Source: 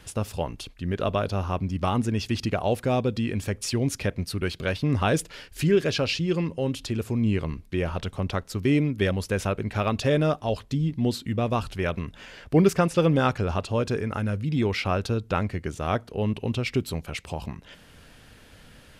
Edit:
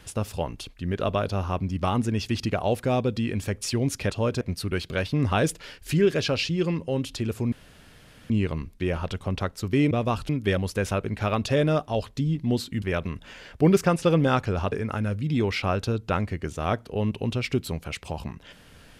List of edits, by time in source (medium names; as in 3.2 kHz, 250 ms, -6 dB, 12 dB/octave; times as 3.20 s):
7.22 s: insert room tone 0.78 s
11.36–11.74 s: move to 8.83 s
13.64–13.94 s: move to 4.11 s